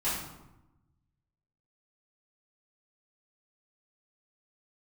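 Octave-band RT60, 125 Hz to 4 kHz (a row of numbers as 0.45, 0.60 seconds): 1.7, 1.3, 0.95, 0.95, 0.75, 0.60 seconds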